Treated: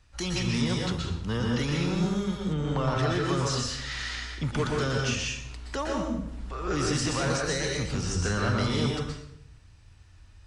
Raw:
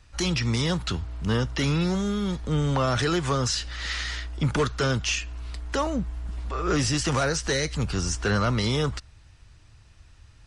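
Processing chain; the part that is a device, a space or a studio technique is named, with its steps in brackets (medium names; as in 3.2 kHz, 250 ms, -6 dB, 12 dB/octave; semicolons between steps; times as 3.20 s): bathroom (reverberation RT60 0.75 s, pre-delay 112 ms, DRR -1 dB); 2.53–3.29 s: treble shelf 5.6 kHz -10.5 dB; trim -6 dB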